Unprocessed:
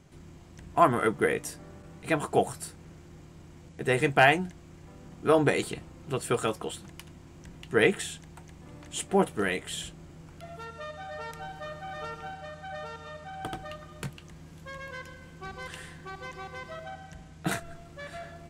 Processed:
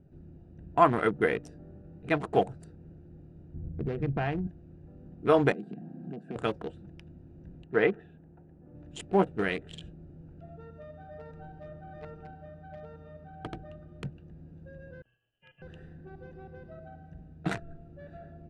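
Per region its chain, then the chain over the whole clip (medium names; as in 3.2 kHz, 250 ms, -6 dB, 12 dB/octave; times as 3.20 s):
3.54–4.47 s: RIAA curve playback + compression 3:1, threshold -28 dBFS + de-hum 63.39 Hz, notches 3
5.52–6.36 s: high-pass 150 Hz 24 dB/octave + compression 2.5:1, threshold -47 dBFS + small resonant body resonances 210/720/1600 Hz, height 15 dB, ringing for 30 ms
7.64–8.75 s: low-pass 1.8 kHz + bass shelf 140 Hz -10.5 dB
15.02–15.62 s: frequency inversion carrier 3.2 kHz + expander -38 dBFS
whole clip: local Wiener filter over 41 samples; low-pass 5.1 kHz 12 dB/octave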